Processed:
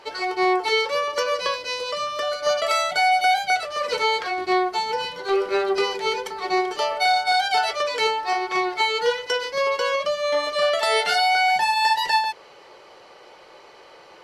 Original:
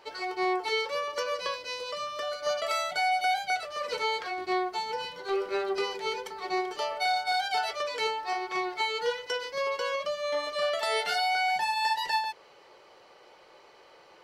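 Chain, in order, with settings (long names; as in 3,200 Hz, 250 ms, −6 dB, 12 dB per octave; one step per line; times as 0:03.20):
linear-phase brick-wall low-pass 13,000 Hz
level +8 dB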